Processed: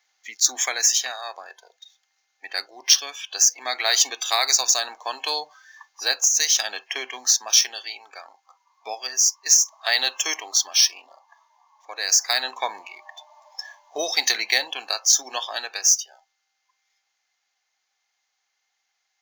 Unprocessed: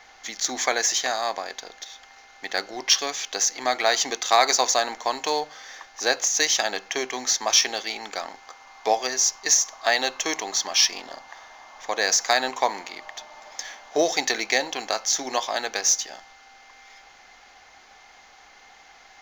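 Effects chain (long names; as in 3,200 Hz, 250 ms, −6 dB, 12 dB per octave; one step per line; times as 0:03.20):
spectral tilt +4.5 dB per octave
noise reduction from a noise print of the clip's start 21 dB
speech leveller within 3 dB 0.5 s
level −6 dB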